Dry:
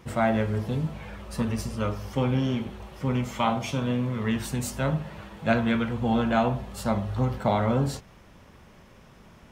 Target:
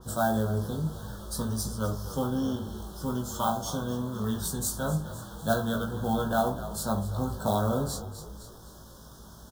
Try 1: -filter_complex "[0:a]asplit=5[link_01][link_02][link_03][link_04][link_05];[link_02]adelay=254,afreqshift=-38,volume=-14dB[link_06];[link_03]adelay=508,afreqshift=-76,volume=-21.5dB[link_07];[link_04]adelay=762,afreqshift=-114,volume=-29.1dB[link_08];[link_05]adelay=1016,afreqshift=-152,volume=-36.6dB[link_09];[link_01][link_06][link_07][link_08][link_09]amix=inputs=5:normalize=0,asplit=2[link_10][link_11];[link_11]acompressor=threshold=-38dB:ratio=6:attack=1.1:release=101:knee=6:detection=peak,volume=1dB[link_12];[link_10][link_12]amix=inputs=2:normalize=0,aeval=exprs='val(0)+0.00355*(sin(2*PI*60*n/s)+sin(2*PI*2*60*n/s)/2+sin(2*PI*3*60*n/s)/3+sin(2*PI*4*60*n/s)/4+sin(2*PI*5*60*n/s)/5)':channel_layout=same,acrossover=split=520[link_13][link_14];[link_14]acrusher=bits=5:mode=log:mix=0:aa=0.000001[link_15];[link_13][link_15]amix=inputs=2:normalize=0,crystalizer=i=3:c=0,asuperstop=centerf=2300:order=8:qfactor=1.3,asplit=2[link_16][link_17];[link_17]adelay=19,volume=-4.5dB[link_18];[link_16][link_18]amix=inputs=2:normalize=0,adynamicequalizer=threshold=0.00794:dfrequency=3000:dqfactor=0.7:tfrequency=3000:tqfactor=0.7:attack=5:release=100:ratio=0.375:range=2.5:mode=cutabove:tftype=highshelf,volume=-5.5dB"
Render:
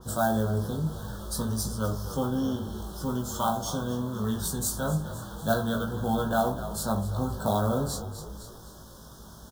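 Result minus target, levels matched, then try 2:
downward compressor: peak gain reduction −9.5 dB
-filter_complex "[0:a]asplit=5[link_01][link_02][link_03][link_04][link_05];[link_02]adelay=254,afreqshift=-38,volume=-14dB[link_06];[link_03]adelay=508,afreqshift=-76,volume=-21.5dB[link_07];[link_04]adelay=762,afreqshift=-114,volume=-29.1dB[link_08];[link_05]adelay=1016,afreqshift=-152,volume=-36.6dB[link_09];[link_01][link_06][link_07][link_08][link_09]amix=inputs=5:normalize=0,asplit=2[link_10][link_11];[link_11]acompressor=threshold=-49.5dB:ratio=6:attack=1.1:release=101:knee=6:detection=peak,volume=1dB[link_12];[link_10][link_12]amix=inputs=2:normalize=0,aeval=exprs='val(0)+0.00355*(sin(2*PI*60*n/s)+sin(2*PI*2*60*n/s)/2+sin(2*PI*3*60*n/s)/3+sin(2*PI*4*60*n/s)/4+sin(2*PI*5*60*n/s)/5)':channel_layout=same,acrossover=split=520[link_13][link_14];[link_14]acrusher=bits=5:mode=log:mix=0:aa=0.000001[link_15];[link_13][link_15]amix=inputs=2:normalize=0,crystalizer=i=3:c=0,asuperstop=centerf=2300:order=8:qfactor=1.3,asplit=2[link_16][link_17];[link_17]adelay=19,volume=-4.5dB[link_18];[link_16][link_18]amix=inputs=2:normalize=0,adynamicequalizer=threshold=0.00794:dfrequency=3000:dqfactor=0.7:tfrequency=3000:tqfactor=0.7:attack=5:release=100:ratio=0.375:range=2.5:mode=cutabove:tftype=highshelf,volume=-5.5dB"

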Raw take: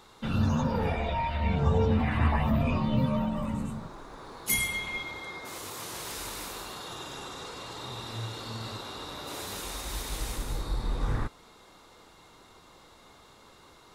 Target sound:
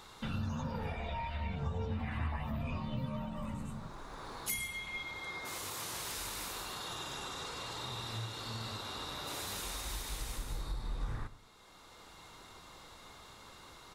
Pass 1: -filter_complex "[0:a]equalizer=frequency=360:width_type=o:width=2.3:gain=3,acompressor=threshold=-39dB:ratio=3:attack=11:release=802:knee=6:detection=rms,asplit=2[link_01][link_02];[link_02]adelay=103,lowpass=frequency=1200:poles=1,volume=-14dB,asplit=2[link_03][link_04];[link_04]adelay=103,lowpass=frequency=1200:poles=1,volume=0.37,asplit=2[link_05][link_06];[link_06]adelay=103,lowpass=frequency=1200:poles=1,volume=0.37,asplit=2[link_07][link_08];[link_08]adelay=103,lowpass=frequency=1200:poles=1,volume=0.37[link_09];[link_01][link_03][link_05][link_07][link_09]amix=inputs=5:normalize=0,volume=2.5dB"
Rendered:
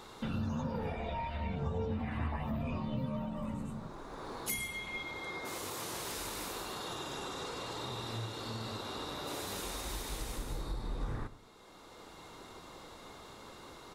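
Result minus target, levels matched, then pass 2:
500 Hz band +4.0 dB
-filter_complex "[0:a]equalizer=frequency=360:width_type=o:width=2.3:gain=-5,acompressor=threshold=-39dB:ratio=3:attack=11:release=802:knee=6:detection=rms,asplit=2[link_01][link_02];[link_02]adelay=103,lowpass=frequency=1200:poles=1,volume=-14dB,asplit=2[link_03][link_04];[link_04]adelay=103,lowpass=frequency=1200:poles=1,volume=0.37,asplit=2[link_05][link_06];[link_06]adelay=103,lowpass=frequency=1200:poles=1,volume=0.37,asplit=2[link_07][link_08];[link_08]adelay=103,lowpass=frequency=1200:poles=1,volume=0.37[link_09];[link_01][link_03][link_05][link_07][link_09]amix=inputs=5:normalize=0,volume=2.5dB"

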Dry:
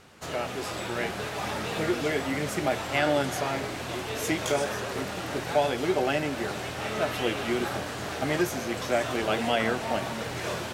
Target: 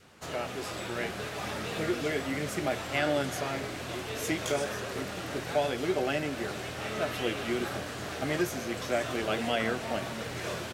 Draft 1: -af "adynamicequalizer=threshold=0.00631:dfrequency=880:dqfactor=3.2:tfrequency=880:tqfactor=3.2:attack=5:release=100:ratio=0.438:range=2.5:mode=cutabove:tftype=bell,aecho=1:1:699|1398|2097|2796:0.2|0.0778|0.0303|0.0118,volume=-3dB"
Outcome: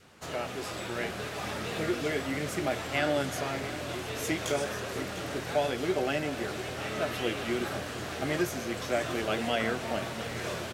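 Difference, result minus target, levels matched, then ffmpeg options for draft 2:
echo-to-direct +12 dB
-af "adynamicequalizer=threshold=0.00631:dfrequency=880:dqfactor=3.2:tfrequency=880:tqfactor=3.2:attack=5:release=100:ratio=0.438:range=2.5:mode=cutabove:tftype=bell,aecho=1:1:699|1398:0.0501|0.0195,volume=-3dB"

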